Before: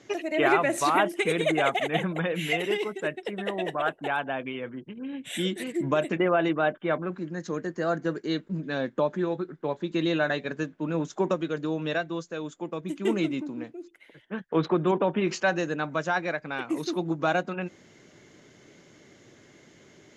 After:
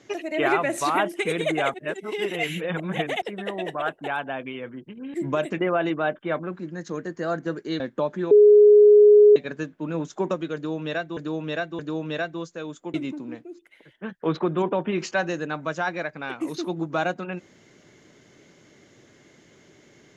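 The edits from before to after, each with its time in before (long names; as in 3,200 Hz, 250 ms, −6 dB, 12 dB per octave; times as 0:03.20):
0:01.74–0:03.22: reverse
0:05.14–0:05.73: remove
0:08.39–0:08.80: remove
0:09.31–0:10.36: beep over 417 Hz −9 dBFS
0:11.55–0:12.17: repeat, 3 plays
0:12.70–0:13.23: remove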